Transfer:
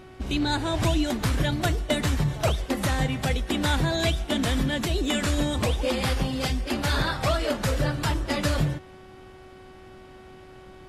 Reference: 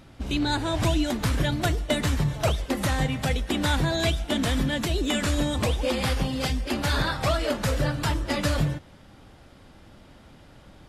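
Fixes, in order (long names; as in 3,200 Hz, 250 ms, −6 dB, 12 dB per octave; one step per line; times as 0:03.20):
hum removal 373.8 Hz, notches 8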